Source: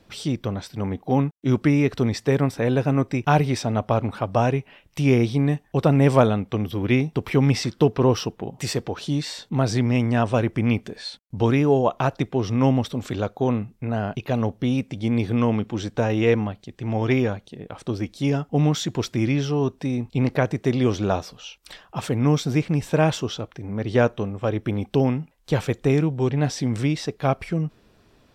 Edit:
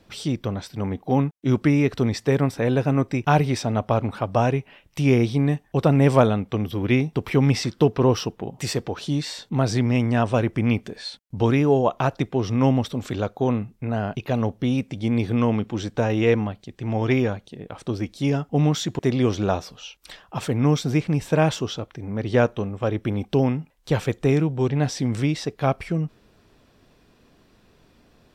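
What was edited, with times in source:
18.99–20.60 s: delete

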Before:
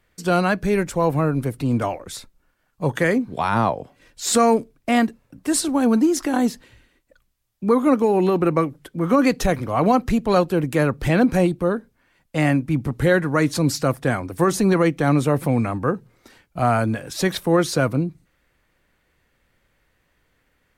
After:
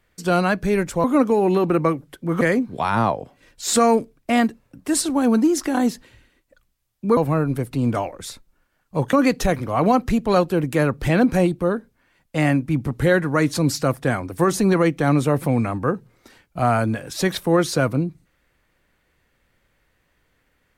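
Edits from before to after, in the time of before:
1.04–3.00 s: swap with 7.76–9.13 s

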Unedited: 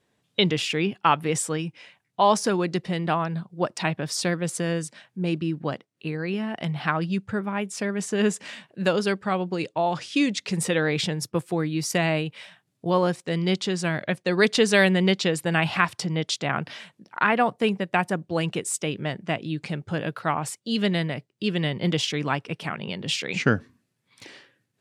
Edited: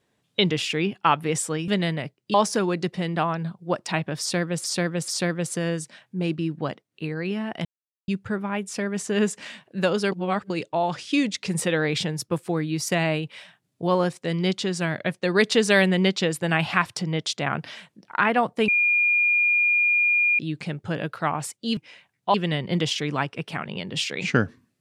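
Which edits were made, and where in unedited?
1.68–2.25 s: swap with 20.80–21.46 s
4.11–4.55 s: loop, 3 plays
6.68–7.11 s: mute
9.15–9.53 s: reverse
17.71–19.42 s: bleep 2.42 kHz -17 dBFS

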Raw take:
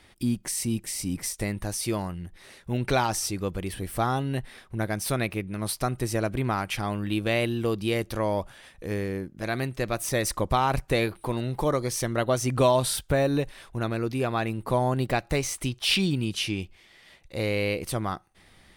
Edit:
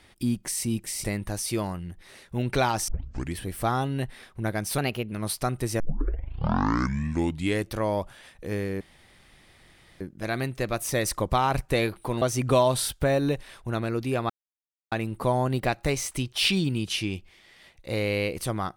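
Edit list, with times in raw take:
1.04–1.39 s: delete
3.23 s: tape start 0.49 s
5.13–5.51 s: speed 113%
6.19 s: tape start 1.94 s
9.20 s: insert room tone 1.20 s
11.41–12.30 s: delete
14.38 s: insert silence 0.62 s

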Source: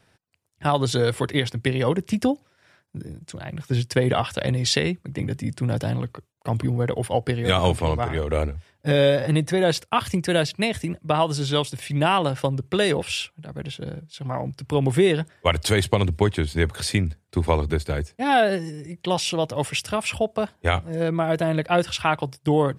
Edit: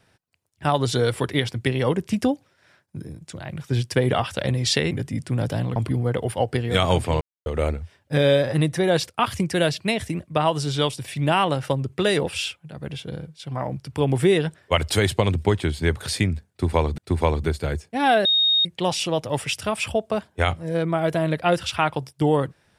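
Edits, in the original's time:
4.91–5.22 s: delete
6.07–6.50 s: delete
7.95–8.20 s: mute
17.24–17.72 s: loop, 2 plays
18.51–18.91 s: bleep 3.72 kHz -15.5 dBFS

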